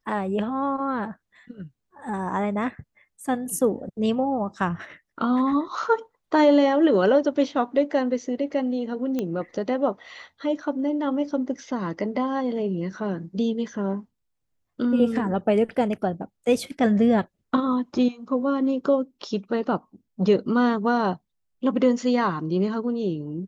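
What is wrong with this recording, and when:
0:09.19: click −15 dBFS

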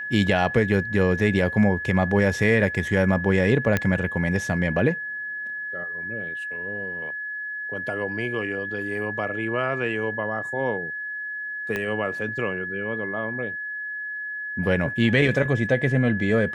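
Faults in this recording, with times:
whistle 1,700 Hz −29 dBFS
0:03.77: click −8 dBFS
0:11.76: click −14 dBFS

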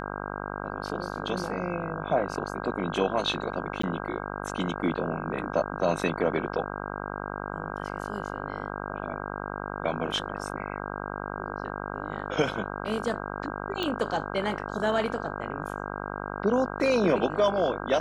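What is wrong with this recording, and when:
mains buzz 50 Hz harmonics 32 −35 dBFS
0:03.82–0:03.83: drop-out 14 ms
0:13.83: click −16 dBFS

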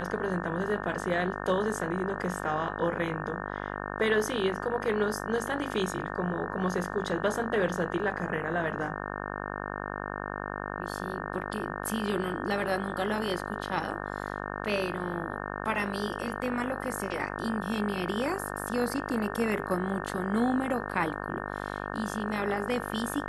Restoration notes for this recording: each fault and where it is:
mains buzz 50 Hz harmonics 36 −36 dBFS

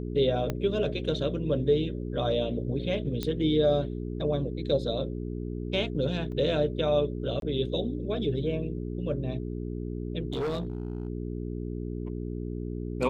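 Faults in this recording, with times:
mains hum 60 Hz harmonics 7 −34 dBFS
0:00.50: click −16 dBFS
0:03.23: click −16 dBFS
0:06.32: drop-out 2.5 ms
0:07.40–0:07.42: drop-out 22 ms
0:10.32–0:11.08: clipping −27 dBFS

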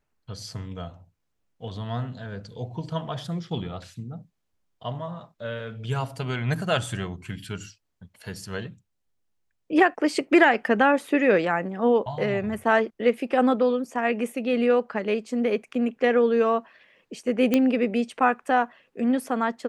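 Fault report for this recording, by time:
0:17.54: click −8 dBFS

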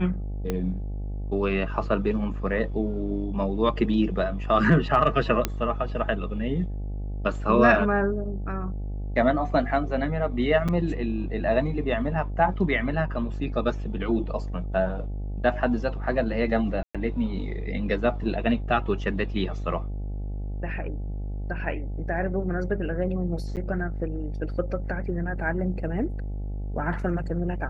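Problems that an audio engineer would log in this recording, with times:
mains buzz 50 Hz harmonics 17 −31 dBFS
0:00.50: click −14 dBFS
0:05.45: click −8 dBFS
0:10.68–0:10.69: drop-out 5.8 ms
0:16.83–0:16.95: drop-out 116 ms
0:23.56–0:23.57: drop-out 8.6 ms

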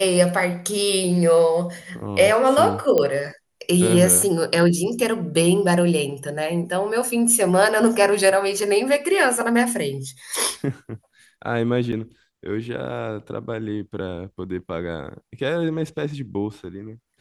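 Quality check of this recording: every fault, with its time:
0:02.98: click −8 dBFS
0:11.92–0:11.93: drop-out 6.4 ms

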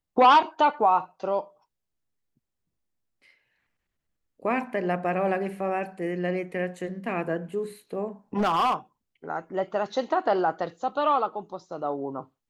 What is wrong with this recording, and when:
0:08.37–0:08.74: clipping −19.5 dBFS

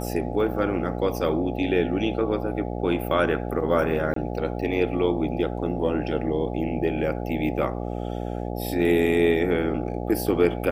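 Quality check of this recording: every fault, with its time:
mains buzz 60 Hz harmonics 14 −30 dBFS
0:04.14–0:04.16: drop-out 23 ms

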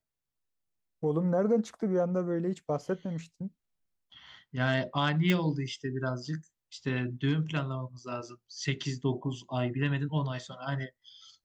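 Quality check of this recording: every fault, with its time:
0:05.30: click −14 dBFS

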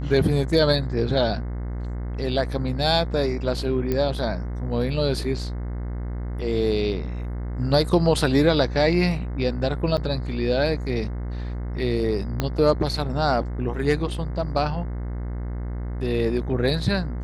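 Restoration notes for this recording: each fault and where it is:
mains buzz 60 Hz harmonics 36 −29 dBFS
0:03.92: click −12 dBFS
0:09.97–0:09.98: drop-out 6.8 ms
0:12.40: click −9 dBFS

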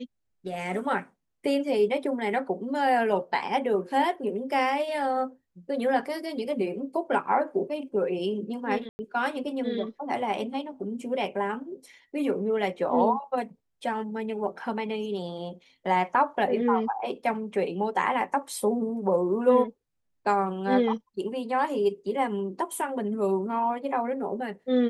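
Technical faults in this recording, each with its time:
0:08.89–0:08.99: drop-out 100 ms

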